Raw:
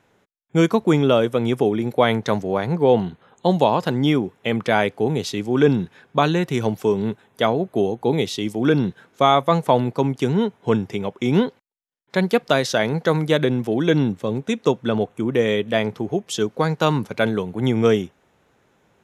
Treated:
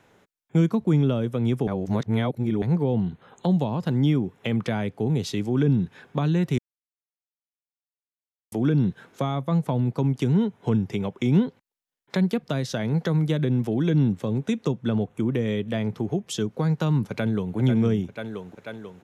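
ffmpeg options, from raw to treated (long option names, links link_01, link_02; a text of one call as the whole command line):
ffmpeg -i in.wav -filter_complex "[0:a]asplit=2[link_01][link_02];[link_02]afade=type=in:start_time=17.09:duration=0.01,afade=type=out:start_time=17.56:duration=0.01,aecho=0:1:490|980|1470|1960|2450|2940:0.446684|0.223342|0.111671|0.0558354|0.0279177|0.0139589[link_03];[link_01][link_03]amix=inputs=2:normalize=0,asplit=5[link_04][link_05][link_06][link_07][link_08];[link_04]atrim=end=1.672[link_09];[link_05]atrim=start=1.668:end=2.622,asetpts=PTS-STARTPTS,areverse[link_10];[link_06]atrim=start=2.618:end=6.58,asetpts=PTS-STARTPTS,afade=type=out:start_time=3.958:duration=0.004:curve=hsin[link_11];[link_07]atrim=start=6.58:end=8.52,asetpts=PTS-STARTPTS,volume=0[link_12];[link_08]atrim=start=8.52,asetpts=PTS-STARTPTS,afade=type=in:duration=0.004:curve=hsin[link_13];[link_09][link_10]acrossfade=duration=0.004:curve1=hsin:curve2=hsin[link_14];[link_11][link_12][link_13]concat=n=3:v=0:a=1[link_15];[link_14][link_15]acrossfade=duration=0.004:curve1=hsin:curve2=hsin,acrossover=split=230[link_16][link_17];[link_17]acompressor=threshold=-32dB:ratio=6[link_18];[link_16][link_18]amix=inputs=2:normalize=0,volume=2.5dB" out.wav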